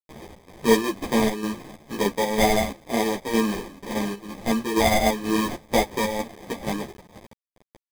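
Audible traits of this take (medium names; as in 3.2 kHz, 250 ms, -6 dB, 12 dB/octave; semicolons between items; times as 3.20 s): a quantiser's noise floor 6-bit, dither none; chopped level 2.1 Hz, depth 60%, duty 70%; aliases and images of a low sample rate 1.4 kHz, jitter 0%; a shimmering, thickened sound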